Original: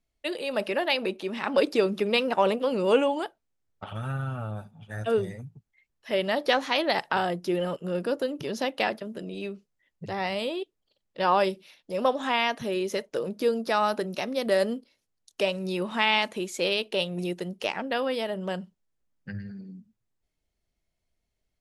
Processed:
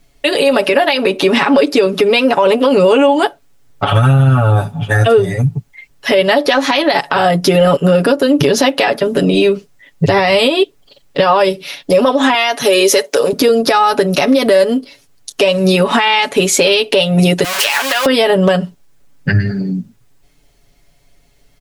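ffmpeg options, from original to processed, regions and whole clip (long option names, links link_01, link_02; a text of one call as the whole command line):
ffmpeg -i in.wav -filter_complex "[0:a]asettb=1/sr,asplit=3[link_01][link_02][link_03];[link_01]atrim=end=12.344[link_04];[link_02]atrim=start=12.34:end=13.33,asetpts=PTS-STARTPTS,afade=type=in:duration=0.004:curve=qsin,afade=type=out:start_time=0.986:duration=0.004:curve=qsin,highpass=160,bass=frequency=250:gain=-13,treble=frequency=4000:gain=6[link_05];[link_03]atrim=start=13.326[link_06];[link_04][link_05]acrossfade=duration=0.004:curve1=hsin:curve2=qsin[link_07];[link_07][link_06]acrossfade=duration=0.004:curve1=qsin:curve2=hsin,asettb=1/sr,asplit=3[link_08][link_09][link_10];[link_08]atrim=end=17.444[link_11];[link_09]atrim=start=17.44:end=18.06,asetpts=PTS-STARTPTS,afade=type=in:duration=0.004:curve=qsin,afade=type=out:start_time=0.616:duration=0.004:curve=qsin,aeval=exprs='val(0)+0.5*0.0398*sgn(val(0))':channel_layout=same,highpass=1200,acompressor=threshold=-36dB:ratio=6:attack=3.2:release=140:knee=1:detection=peak[link_12];[link_10]atrim=start=18.056[link_13];[link_11][link_12]acrossfade=duration=0.004:curve1=hsin:curve2=qsin[link_14];[link_14][link_13]acrossfade=duration=0.004:curve1=qsin:curve2=hsin,aecho=1:1:7.1:0.85,acompressor=threshold=-31dB:ratio=6,alimiter=level_in=26dB:limit=-1dB:release=50:level=0:latency=1,volume=-1dB" out.wav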